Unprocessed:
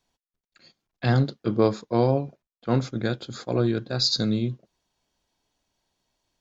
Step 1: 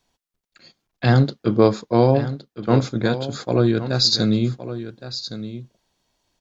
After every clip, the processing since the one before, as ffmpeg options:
-af "aecho=1:1:1115:0.237,volume=5.5dB"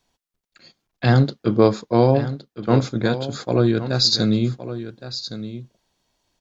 -af anull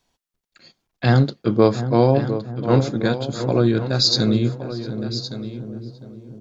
-filter_complex "[0:a]asplit=2[a][b];[b]adelay=705,lowpass=f=850:p=1,volume=-9.5dB,asplit=2[c][d];[d]adelay=705,lowpass=f=850:p=1,volume=0.54,asplit=2[e][f];[f]adelay=705,lowpass=f=850:p=1,volume=0.54,asplit=2[g][h];[h]adelay=705,lowpass=f=850:p=1,volume=0.54,asplit=2[i][j];[j]adelay=705,lowpass=f=850:p=1,volume=0.54,asplit=2[k][l];[l]adelay=705,lowpass=f=850:p=1,volume=0.54[m];[a][c][e][g][i][k][m]amix=inputs=7:normalize=0"

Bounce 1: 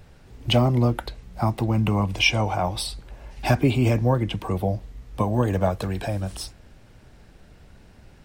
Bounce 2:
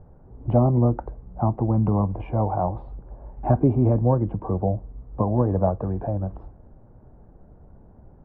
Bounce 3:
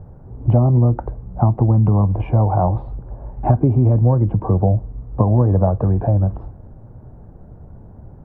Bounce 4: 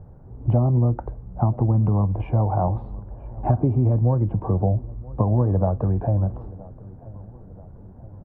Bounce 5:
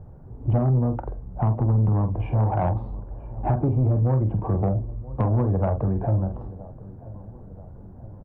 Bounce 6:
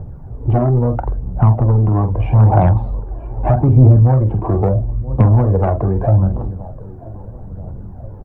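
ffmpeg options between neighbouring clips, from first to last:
-af "lowpass=f=1k:w=0.5412,lowpass=f=1k:w=1.3066,volume=1dB"
-af "equalizer=f=110:t=o:w=1.1:g=7,acompressor=threshold=-17dB:ratio=6,volume=6.5dB"
-filter_complex "[0:a]asplit=2[a][b];[b]adelay=977,lowpass=f=1.6k:p=1,volume=-20dB,asplit=2[c][d];[d]adelay=977,lowpass=f=1.6k:p=1,volume=0.52,asplit=2[e][f];[f]adelay=977,lowpass=f=1.6k:p=1,volume=0.52,asplit=2[g][h];[h]adelay=977,lowpass=f=1.6k:p=1,volume=0.52[i];[a][c][e][g][i]amix=inputs=5:normalize=0,volume=-5dB"
-filter_complex "[0:a]asplit=2[a][b];[b]adelay=46,volume=-8dB[c];[a][c]amix=inputs=2:normalize=0,asoftclip=type=tanh:threshold=-14.5dB"
-af "aphaser=in_gain=1:out_gain=1:delay=3.1:decay=0.47:speed=0.78:type=triangular,volume=8dB"

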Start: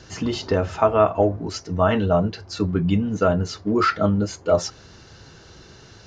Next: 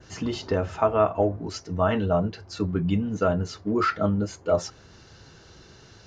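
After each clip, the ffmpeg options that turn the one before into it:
-af "adynamicequalizer=threshold=0.00501:dfrequency=4700:dqfactor=1.1:tfrequency=4700:tqfactor=1.1:attack=5:release=100:ratio=0.375:range=2:mode=cutabove:tftype=bell,volume=-4dB"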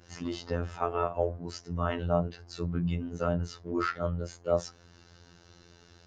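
-af "afftfilt=real='hypot(re,im)*cos(PI*b)':imag='0':win_size=2048:overlap=0.75,volume=-3dB"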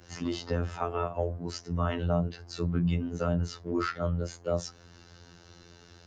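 -filter_complex "[0:a]acrossover=split=260|3000[a][b][c];[b]acompressor=threshold=-33dB:ratio=2.5[d];[a][d][c]amix=inputs=3:normalize=0,volume=3dB"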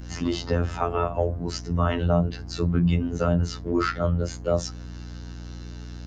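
-af "aeval=exprs='val(0)+0.00794*(sin(2*PI*60*n/s)+sin(2*PI*2*60*n/s)/2+sin(2*PI*3*60*n/s)/3+sin(2*PI*4*60*n/s)/4+sin(2*PI*5*60*n/s)/5)':c=same,volume=6dB"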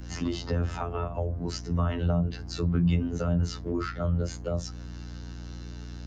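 -filter_complex "[0:a]acrossover=split=220[a][b];[b]acompressor=threshold=-28dB:ratio=6[c];[a][c]amix=inputs=2:normalize=0,volume=-2dB"

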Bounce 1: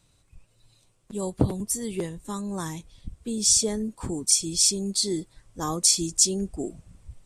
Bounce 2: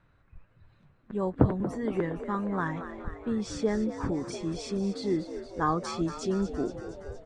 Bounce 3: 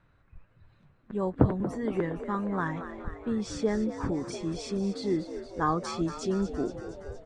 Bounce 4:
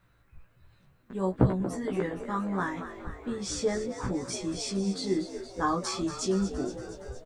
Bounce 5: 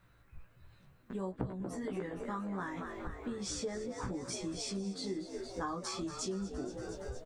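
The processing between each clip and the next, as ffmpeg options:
-filter_complex "[0:a]lowpass=f=1.6k:t=q:w=2.8,asplit=2[a][b];[b]asplit=8[c][d][e][f][g][h][i][j];[c]adelay=233,afreqshift=66,volume=-11.5dB[k];[d]adelay=466,afreqshift=132,volume=-15.2dB[l];[e]adelay=699,afreqshift=198,volume=-19dB[m];[f]adelay=932,afreqshift=264,volume=-22.7dB[n];[g]adelay=1165,afreqshift=330,volume=-26.5dB[o];[h]adelay=1398,afreqshift=396,volume=-30.2dB[p];[i]adelay=1631,afreqshift=462,volume=-34dB[q];[j]adelay=1864,afreqshift=528,volume=-37.7dB[r];[k][l][m][n][o][p][q][r]amix=inputs=8:normalize=0[s];[a][s]amix=inputs=2:normalize=0"
-af anull
-filter_complex "[0:a]flanger=delay=5.1:depth=9:regen=-80:speed=0.7:shape=sinusoidal,crystalizer=i=2.5:c=0,asplit=2[a][b];[b]adelay=16,volume=-2dB[c];[a][c]amix=inputs=2:normalize=0,volume=1.5dB"
-af "acompressor=threshold=-37dB:ratio=4"

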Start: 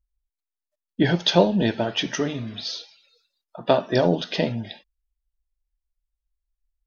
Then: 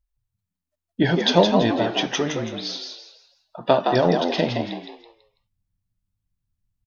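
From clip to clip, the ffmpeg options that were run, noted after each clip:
-filter_complex "[0:a]equalizer=f=1k:w=1.5:g=3,asplit=2[a][b];[b]asplit=4[c][d][e][f];[c]adelay=165,afreqshift=78,volume=-5dB[g];[d]adelay=330,afreqshift=156,volume=-14.9dB[h];[e]adelay=495,afreqshift=234,volume=-24.8dB[i];[f]adelay=660,afreqshift=312,volume=-34.7dB[j];[g][h][i][j]amix=inputs=4:normalize=0[k];[a][k]amix=inputs=2:normalize=0"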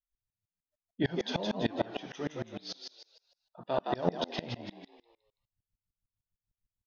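-af "aeval=exprs='val(0)*pow(10,-27*if(lt(mod(-6.6*n/s,1),2*abs(-6.6)/1000),1-mod(-6.6*n/s,1)/(2*abs(-6.6)/1000),(mod(-6.6*n/s,1)-2*abs(-6.6)/1000)/(1-2*abs(-6.6)/1000))/20)':c=same,volume=-5dB"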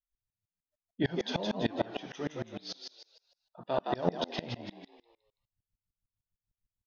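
-af anull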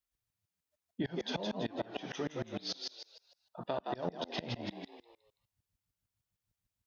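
-af "highpass=53,acompressor=threshold=-38dB:ratio=6,volume=4.5dB"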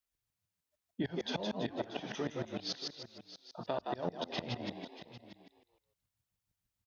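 -af "bandreject=f=50:t=h:w=6,bandreject=f=100:t=h:w=6,aecho=1:1:633:0.2"

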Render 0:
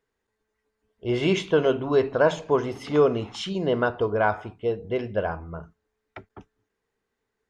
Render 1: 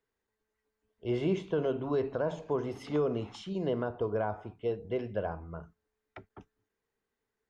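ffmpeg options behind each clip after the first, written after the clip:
-filter_complex "[0:a]acrossover=split=210|1000[a][b][c];[b]alimiter=limit=-17.5dB:level=0:latency=1[d];[c]acompressor=threshold=-41dB:ratio=6[e];[a][d][e]amix=inputs=3:normalize=0,volume=-6dB"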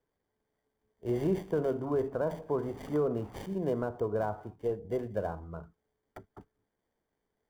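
-filter_complex "[0:a]highshelf=f=3.3k:g=9.5,acrossover=split=1700[a][b];[b]acrusher=samples=33:mix=1:aa=0.000001[c];[a][c]amix=inputs=2:normalize=0"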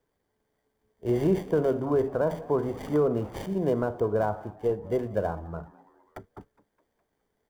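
-filter_complex "[0:a]asplit=5[a][b][c][d][e];[b]adelay=207,afreqshift=100,volume=-22.5dB[f];[c]adelay=414,afreqshift=200,volume=-28.2dB[g];[d]adelay=621,afreqshift=300,volume=-33.9dB[h];[e]adelay=828,afreqshift=400,volume=-39.5dB[i];[a][f][g][h][i]amix=inputs=5:normalize=0,volume=5.5dB"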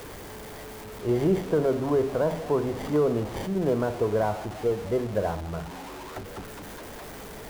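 -af "aeval=exprs='val(0)+0.5*0.0188*sgn(val(0))':c=same,aeval=exprs='val(0)+0.00251*(sin(2*PI*50*n/s)+sin(2*PI*2*50*n/s)/2+sin(2*PI*3*50*n/s)/3+sin(2*PI*4*50*n/s)/4+sin(2*PI*5*50*n/s)/5)':c=same"

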